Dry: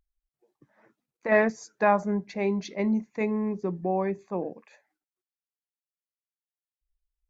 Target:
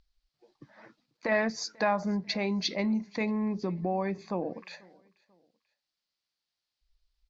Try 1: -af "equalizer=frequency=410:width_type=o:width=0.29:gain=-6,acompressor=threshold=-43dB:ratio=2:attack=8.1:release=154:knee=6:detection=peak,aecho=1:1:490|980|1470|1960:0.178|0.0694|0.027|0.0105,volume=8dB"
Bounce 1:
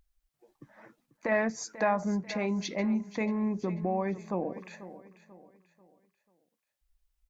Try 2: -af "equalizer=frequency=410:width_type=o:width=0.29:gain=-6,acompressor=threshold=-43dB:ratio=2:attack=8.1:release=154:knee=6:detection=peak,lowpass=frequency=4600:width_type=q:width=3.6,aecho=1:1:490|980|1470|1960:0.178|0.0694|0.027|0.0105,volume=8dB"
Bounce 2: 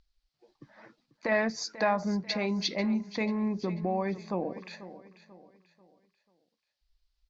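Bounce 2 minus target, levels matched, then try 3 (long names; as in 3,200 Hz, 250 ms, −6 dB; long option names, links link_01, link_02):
echo-to-direct +11 dB
-af "equalizer=frequency=410:width_type=o:width=0.29:gain=-6,acompressor=threshold=-43dB:ratio=2:attack=8.1:release=154:knee=6:detection=peak,lowpass=frequency=4600:width_type=q:width=3.6,aecho=1:1:490|980:0.0501|0.0195,volume=8dB"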